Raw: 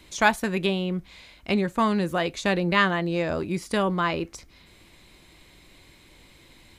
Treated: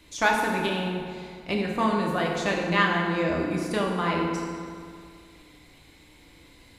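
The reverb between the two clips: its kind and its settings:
feedback delay network reverb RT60 2.2 s, low-frequency decay 1.05×, high-frequency decay 0.6×, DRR −1.5 dB
level −4 dB

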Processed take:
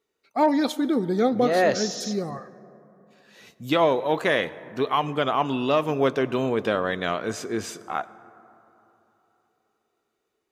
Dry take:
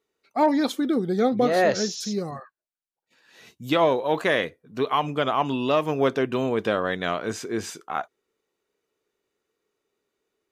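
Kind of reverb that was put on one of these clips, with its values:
dense smooth reverb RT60 3.4 s, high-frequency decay 0.3×, pre-delay 75 ms, DRR 18 dB

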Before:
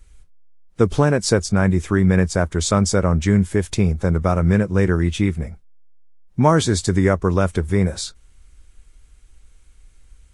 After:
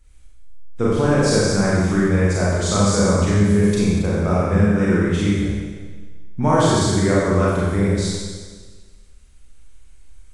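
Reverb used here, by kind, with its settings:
four-comb reverb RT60 1.5 s, combs from 30 ms, DRR −7.5 dB
level −7 dB

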